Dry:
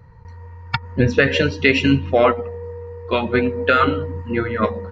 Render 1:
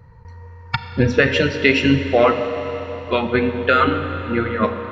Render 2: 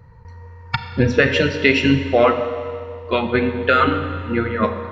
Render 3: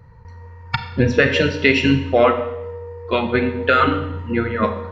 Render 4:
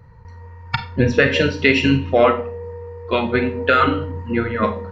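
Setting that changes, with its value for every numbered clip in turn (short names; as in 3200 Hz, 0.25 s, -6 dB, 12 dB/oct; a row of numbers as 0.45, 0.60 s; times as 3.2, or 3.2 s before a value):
Schroeder reverb, RT60: 4.3, 2.1, 0.84, 0.31 s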